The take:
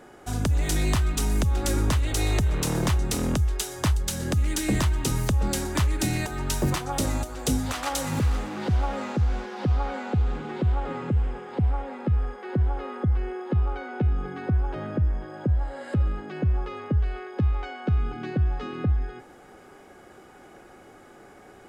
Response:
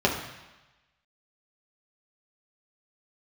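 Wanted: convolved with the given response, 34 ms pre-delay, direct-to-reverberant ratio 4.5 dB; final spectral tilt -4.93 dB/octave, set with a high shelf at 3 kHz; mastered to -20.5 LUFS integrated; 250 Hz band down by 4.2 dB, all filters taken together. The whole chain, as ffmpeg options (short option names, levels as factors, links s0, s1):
-filter_complex "[0:a]equalizer=f=250:t=o:g=-6,highshelf=f=3000:g=3,asplit=2[s0][s1];[1:a]atrim=start_sample=2205,adelay=34[s2];[s1][s2]afir=irnorm=-1:irlink=0,volume=0.106[s3];[s0][s3]amix=inputs=2:normalize=0,volume=1.78"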